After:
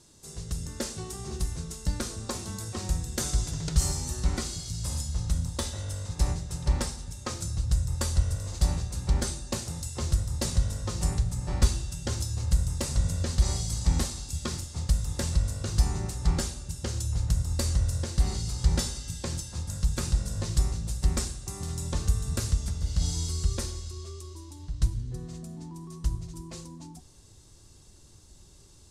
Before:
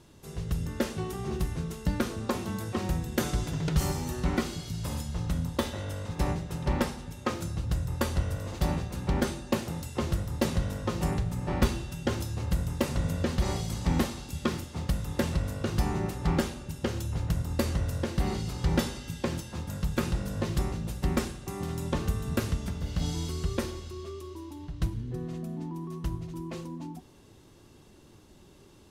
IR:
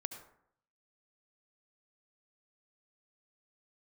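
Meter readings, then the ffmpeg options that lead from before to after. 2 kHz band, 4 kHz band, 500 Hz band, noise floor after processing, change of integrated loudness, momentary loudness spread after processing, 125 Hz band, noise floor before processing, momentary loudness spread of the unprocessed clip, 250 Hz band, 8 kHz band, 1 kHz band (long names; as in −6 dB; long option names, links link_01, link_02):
−5.0 dB, +3.0 dB, −6.5 dB, −53 dBFS, +1.5 dB, 10 LU, +2.0 dB, −55 dBFS, 7 LU, −6.0 dB, +8.5 dB, −5.5 dB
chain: -af "asubboost=boost=4:cutoff=110,aexciter=amount=1.9:drive=8.2:freq=4000,lowpass=frequency=7900:width_type=q:width=2,volume=-5dB"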